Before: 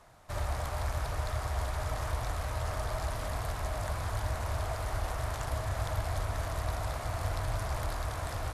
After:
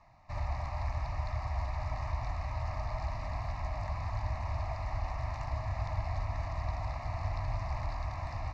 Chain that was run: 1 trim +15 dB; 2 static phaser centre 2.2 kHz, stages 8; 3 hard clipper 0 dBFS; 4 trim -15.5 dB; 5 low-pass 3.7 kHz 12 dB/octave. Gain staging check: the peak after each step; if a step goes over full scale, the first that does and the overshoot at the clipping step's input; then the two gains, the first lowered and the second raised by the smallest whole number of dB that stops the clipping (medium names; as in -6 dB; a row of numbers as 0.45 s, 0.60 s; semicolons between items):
-5.0 dBFS, -5.5 dBFS, -5.5 dBFS, -21.0 dBFS, -21.5 dBFS; nothing clips